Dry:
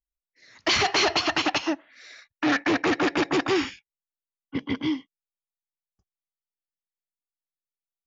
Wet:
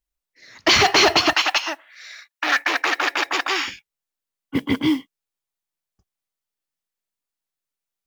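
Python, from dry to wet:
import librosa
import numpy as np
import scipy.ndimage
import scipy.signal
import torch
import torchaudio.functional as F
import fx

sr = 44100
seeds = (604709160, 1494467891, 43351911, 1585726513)

y = fx.highpass(x, sr, hz=900.0, slope=12, at=(1.33, 3.68))
y = fx.mod_noise(y, sr, seeds[0], snr_db=29)
y = y * librosa.db_to_amplitude(7.0)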